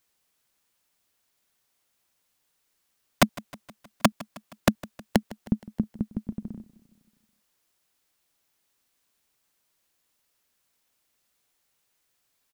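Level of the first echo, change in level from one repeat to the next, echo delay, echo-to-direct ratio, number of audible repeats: -20.0 dB, -4.5 dB, 0.157 s, -18.0 dB, 4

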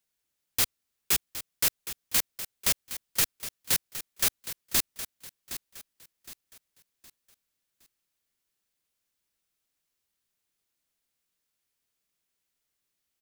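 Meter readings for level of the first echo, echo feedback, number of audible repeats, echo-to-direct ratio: -12.5 dB, 37%, 3, -12.0 dB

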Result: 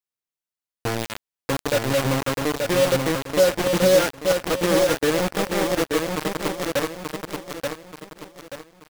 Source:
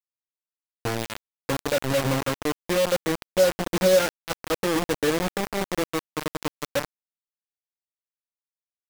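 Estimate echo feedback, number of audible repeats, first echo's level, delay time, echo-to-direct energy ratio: 37%, 4, -4.0 dB, 0.881 s, -3.5 dB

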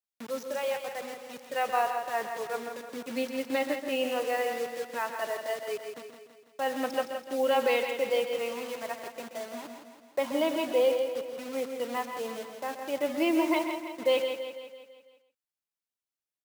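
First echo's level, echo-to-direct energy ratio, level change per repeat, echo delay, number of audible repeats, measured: -10.5 dB, -5.0 dB, no steady repeat, 0.128 s, 9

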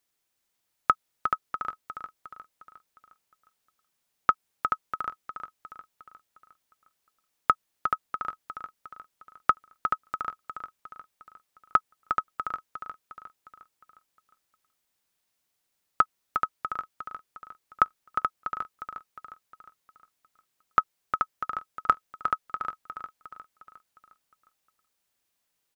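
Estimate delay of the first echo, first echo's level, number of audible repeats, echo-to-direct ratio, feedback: 0.357 s, -7.0 dB, 5, -6.0 dB, 48%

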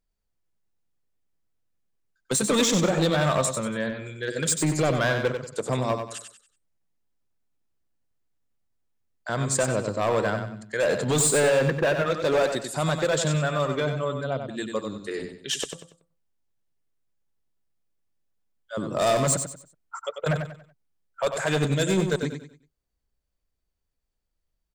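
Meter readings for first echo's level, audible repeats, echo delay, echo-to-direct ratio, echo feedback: -7.0 dB, 3, 94 ms, -6.5 dB, 33%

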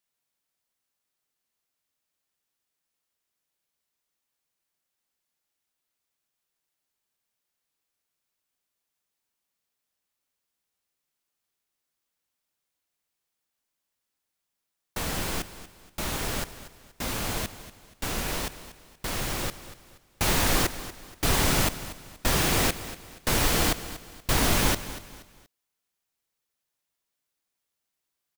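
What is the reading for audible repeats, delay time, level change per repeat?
3, 0.238 s, -9.0 dB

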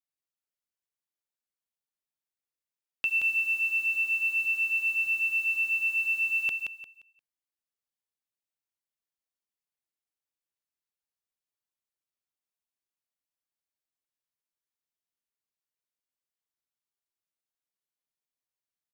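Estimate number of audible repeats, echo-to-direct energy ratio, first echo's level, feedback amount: 3, -4.5 dB, -5.0 dB, 27%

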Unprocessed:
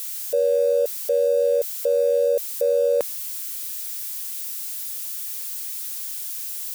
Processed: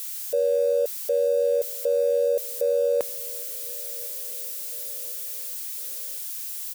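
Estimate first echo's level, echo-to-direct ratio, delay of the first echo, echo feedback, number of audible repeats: -24.0 dB, -22.5 dB, 1.056 s, 52%, 2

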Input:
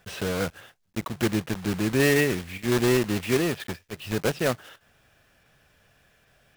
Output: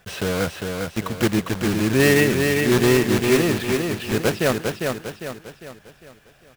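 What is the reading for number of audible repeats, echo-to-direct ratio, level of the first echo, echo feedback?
5, -3.5 dB, -4.5 dB, 44%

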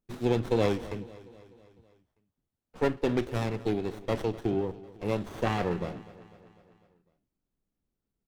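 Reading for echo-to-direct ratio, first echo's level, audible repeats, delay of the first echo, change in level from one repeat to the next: -17.0 dB, -18.5 dB, 4, 0.25 s, -5.0 dB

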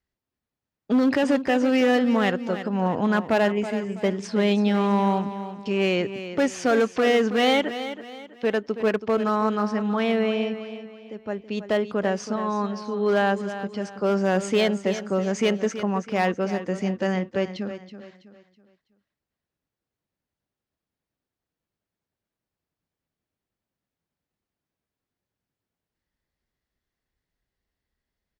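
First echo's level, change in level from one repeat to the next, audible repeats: -11.5 dB, -9.0 dB, 3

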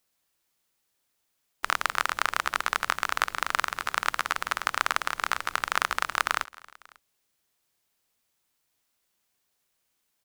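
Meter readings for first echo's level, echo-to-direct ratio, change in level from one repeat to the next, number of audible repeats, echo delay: -22.5 dB, -21.0 dB, -4.5 dB, 2, 0.273 s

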